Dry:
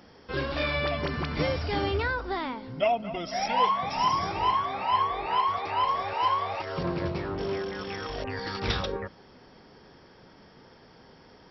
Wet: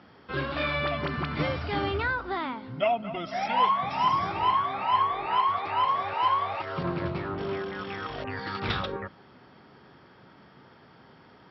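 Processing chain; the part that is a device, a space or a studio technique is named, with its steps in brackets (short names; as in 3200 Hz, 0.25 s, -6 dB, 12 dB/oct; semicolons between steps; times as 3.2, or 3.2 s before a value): guitar cabinet (speaker cabinet 83–4100 Hz, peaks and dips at 130 Hz +3 dB, 480 Hz -5 dB, 1300 Hz +5 dB)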